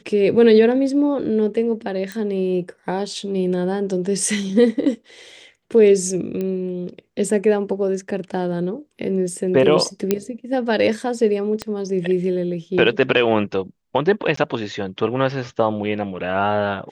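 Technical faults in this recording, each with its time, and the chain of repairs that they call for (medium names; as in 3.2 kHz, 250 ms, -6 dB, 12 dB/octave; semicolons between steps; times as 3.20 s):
2.12 s: pop -15 dBFS
6.41 s: pop -15 dBFS
10.11 s: pop -4 dBFS
11.62 s: pop -11 dBFS
14.36–14.37 s: dropout 14 ms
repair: de-click; interpolate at 14.36 s, 14 ms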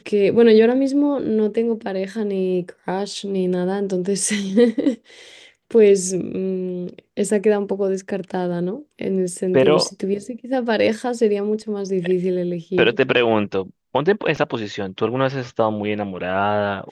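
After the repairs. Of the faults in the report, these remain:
11.62 s: pop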